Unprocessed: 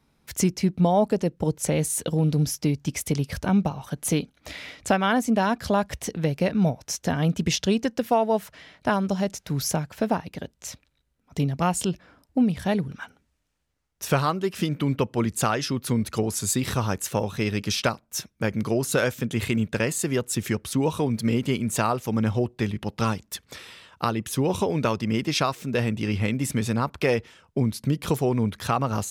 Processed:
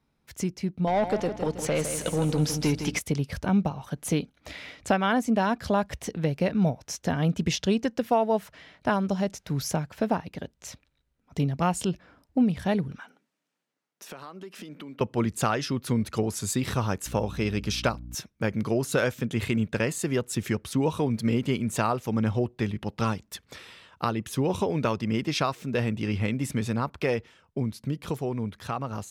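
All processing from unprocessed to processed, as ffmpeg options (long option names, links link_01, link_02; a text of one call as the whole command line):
ffmpeg -i in.wav -filter_complex "[0:a]asettb=1/sr,asplit=3[link_01][link_02][link_03];[link_01]atrim=end=0.874[link_04];[link_02]atrim=start=0.87:end=2.99,asetpts=PTS-STARTPTS,afade=type=in:duration=0.004:curve=qsin,afade=type=out:start_time=2.116:duration=0.004:curve=qsin,aeval=exprs='val(0)+0.0178*(sin(2*PI*60*n/s)+sin(2*PI*2*60*n/s)/2+sin(2*PI*3*60*n/s)/3+sin(2*PI*4*60*n/s)/4+sin(2*PI*5*60*n/s)/5)':channel_layout=same,asplit=2[link_05][link_06];[link_06]highpass=frequency=720:poles=1,volume=17dB,asoftclip=type=tanh:threshold=-10dB[link_07];[link_05][link_07]amix=inputs=2:normalize=0,lowpass=frequency=5400:poles=1,volume=-6dB,aecho=1:1:160|320|480|640|800:0.355|0.156|0.0687|0.0302|0.0133,atrim=end_sample=93492[link_08];[link_03]atrim=start=2.986[link_09];[link_04][link_08]acrossfade=duration=0.004:curve1=hsin:curve2=qsin[link_10];[link_10][link_09]acrossfade=duration=0.004:curve1=qsin:curve2=hsin,asettb=1/sr,asplit=3[link_11][link_12][link_13];[link_11]atrim=end=12.984[link_14];[link_12]atrim=start=12.98:end=15.01,asetpts=PTS-STARTPTS,afade=type=in:duration=0.004:curve=qsin,afade=type=out:start_time=2.026:duration=0.004:curve=qsin,highpass=frequency=190:width=0.5412,highpass=frequency=190:width=1.3066,acompressor=threshold=-37dB:ratio=6:attack=3.2:release=140:knee=1:detection=peak[link_15];[link_13]atrim=start=15.006[link_16];[link_14][link_15]acrossfade=duration=0.004:curve1=hsin:curve2=qsin[link_17];[link_17][link_16]acrossfade=duration=0.004:curve1=qsin:curve2=hsin,asettb=1/sr,asplit=3[link_18][link_19][link_20];[link_18]atrim=end=17.064[link_21];[link_19]atrim=start=17.06:end=18.15,asetpts=PTS-STARTPTS,afade=type=in:duration=0.004:curve=qsin,afade=type=out:start_time=1.086:duration=0.004:curve=qsin,equalizer=frequency=1900:width_type=o:width=0.21:gain=-3.5,aeval=exprs='val(0)+0.0141*(sin(2*PI*60*n/s)+sin(2*PI*2*60*n/s)/2+sin(2*PI*3*60*n/s)/3+sin(2*PI*4*60*n/s)/4+sin(2*PI*5*60*n/s)/5)':channel_layout=same[link_22];[link_20]atrim=start=18.146[link_23];[link_21][link_22]acrossfade=duration=0.004:curve1=hsin:curve2=qsin[link_24];[link_24][link_23]acrossfade=duration=0.004:curve1=qsin:curve2=hsin,highshelf=frequency=5600:gain=-6,dynaudnorm=framelen=210:gausssize=21:maxgain=6dB,volume=-7dB" out.wav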